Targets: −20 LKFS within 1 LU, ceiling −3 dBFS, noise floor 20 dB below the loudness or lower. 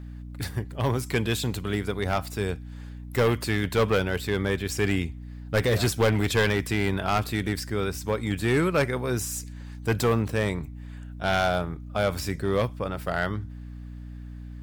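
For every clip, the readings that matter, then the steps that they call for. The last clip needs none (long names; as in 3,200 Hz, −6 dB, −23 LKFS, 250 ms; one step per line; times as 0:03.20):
share of clipped samples 1.4%; peaks flattened at −16.5 dBFS; mains hum 60 Hz; hum harmonics up to 300 Hz; level of the hum −37 dBFS; integrated loudness −26.5 LKFS; sample peak −16.5 dBFS; target loudness −20.0 LKFS
→ clipped peaks rebuilt −16.5 dBFS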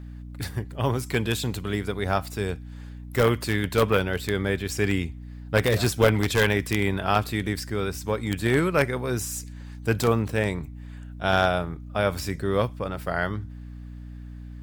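share of clipped samples 0.0%; mains hum 60 Hz; hum harmonics up to 300 Hz; level of the hum −37 dBFS
→ hum removal 60 Hz, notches 5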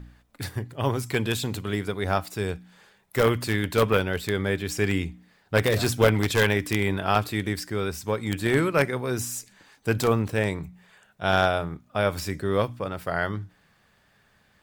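mains hum none found; integrated loudness −26.0 LKFS; sample peak −7.0 dBFS; target loudness −20.0 LKFS
→ level +6 dB
brickwall limiter −3 dBFS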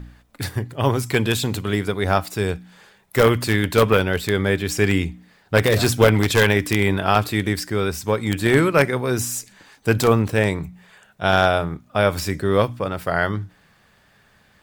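integrated loudness −20.0 LKFS; sample peak −3.0 dBFS; background noise floor −57 dBFS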